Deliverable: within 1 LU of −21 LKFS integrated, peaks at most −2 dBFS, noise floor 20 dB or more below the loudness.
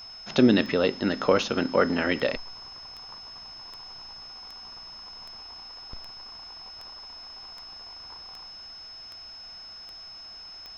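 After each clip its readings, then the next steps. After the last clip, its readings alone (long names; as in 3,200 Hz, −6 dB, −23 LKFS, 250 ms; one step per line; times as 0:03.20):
number of clicks 14; interfering tone 5,200 Hz; level of the tone −41 dBFS; integrated loudness −24.0 LKFS; sample peak −6.0 dBFS; target loudness −21.0 LKFS
→ click removal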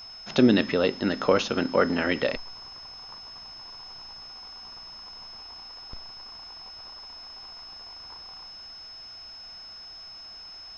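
number of clicks 0; interfering tone 5,200 Hz; level of the tone −41 dBFS
→ notch filter 5,200 Hz, Q 30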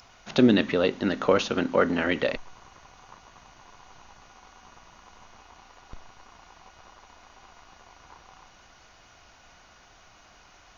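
interfering tone none found; integrated loudness −24.0 LKFS; sample peak −5.5 dBFS; target loudness −21.0 LKFS
→ level +3 dB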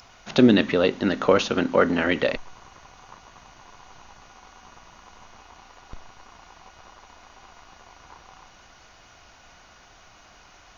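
integrated loudness −21.0 LKFS; sample peak −2.5 dBFS; background noise floor −52 dBFS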